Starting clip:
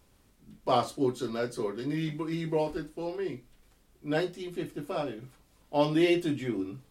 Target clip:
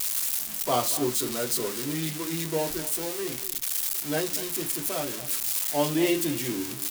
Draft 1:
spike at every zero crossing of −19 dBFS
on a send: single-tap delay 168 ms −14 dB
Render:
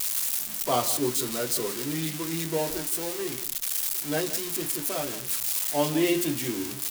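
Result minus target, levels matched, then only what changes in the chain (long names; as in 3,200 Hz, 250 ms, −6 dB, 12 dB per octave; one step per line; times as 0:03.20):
echo 68 ms early
change: single-tap delay 236 ms −14 dB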